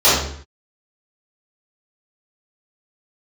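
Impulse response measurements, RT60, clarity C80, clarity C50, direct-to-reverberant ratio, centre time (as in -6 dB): 0.55 s, 5.0 dB, 0.0 dB, -14.0 dB, 59 ms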